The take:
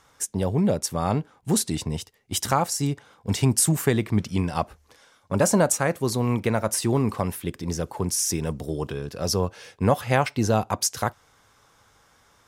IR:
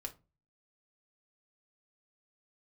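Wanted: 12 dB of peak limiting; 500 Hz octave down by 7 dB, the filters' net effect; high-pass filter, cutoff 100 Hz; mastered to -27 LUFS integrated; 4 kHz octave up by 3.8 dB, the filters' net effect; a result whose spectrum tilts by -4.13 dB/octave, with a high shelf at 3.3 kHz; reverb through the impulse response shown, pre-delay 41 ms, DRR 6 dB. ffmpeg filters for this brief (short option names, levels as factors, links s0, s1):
-filter_complex "[0:a]highpass=100,equalizer=f=500:t=o:g=-9,highshelf=f=3300:g=-3.5,equalizer=f=4000:t=o:g=8.5,alimiter=limit=0.141:level=0:latency=1,asplit=2[s0][s1];[1:a]atrim=start_sample=2205,adelay=41[s2];[s1][s2]afir=irnorm=-1:irlink=0,volume=0.668[s3];[s0][s3]amix=inputs=2:normalize=0,volume=1.12"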